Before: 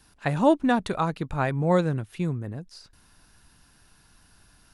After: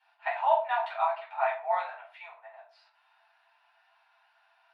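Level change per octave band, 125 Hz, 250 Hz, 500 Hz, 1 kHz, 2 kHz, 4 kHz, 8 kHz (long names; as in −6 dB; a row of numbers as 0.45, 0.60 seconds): below −40 dB, below −40 dB, −5.5 dB, +1.0 dB, −3.0 dB, −8.0 dB, below −30 dB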